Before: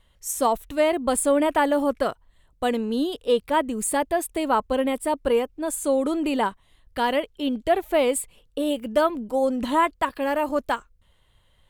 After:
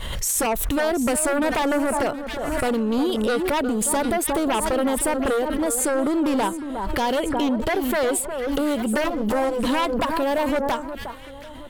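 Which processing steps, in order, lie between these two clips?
9.04–9.67 s: comb filter that takes the minimum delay 9.9 ms; dynamic bell 1.8 kHz, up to -5 dB, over -38 dBFS, Q 1; compression 1.5:1, threshold -48 dBFS, peak gain reduction 11.5 dB; sine folder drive 11 dB, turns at -18.5 dBFS; on a send: echo whose repeats swap between lows and highs 360 ms, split 1.5 kHz, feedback 59%, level -9.5 dB; on the sum: swell ahead of each attack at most 26 dB/s

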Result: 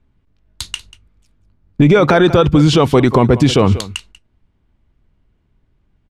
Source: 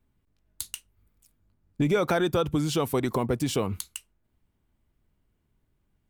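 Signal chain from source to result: low-pass 4.5 kHz 12 dB/octave; on a send: delay 189 ms -18 dB; on the sum: gate -58 dBFS, range -8 dB; bass shelf 110 Hz +4.5 dB; loudness maximiser +18.5 dB; trim -1.5 dB

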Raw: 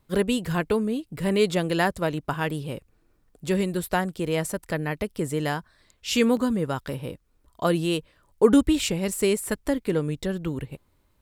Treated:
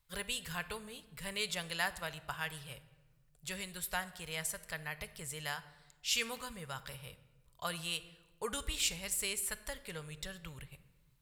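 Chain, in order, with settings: amplifier tone stack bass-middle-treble 10-0-10; simulated room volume 840 m³, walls mixed, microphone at 0.36 m; trim -3 dB

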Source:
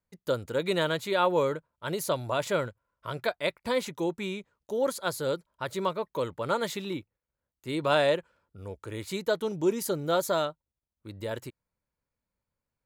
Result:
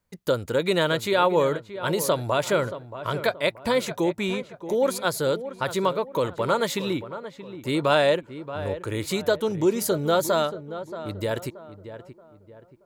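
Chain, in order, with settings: in parallel at +2.5 dB: compression, threshold -33 dBFS, peak gain reduction 13 dB; on the sum: filtered feedback delay 628 ms, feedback 39%, low-pass 1.8 kHz, level -12 dB; trim +1.5 dB

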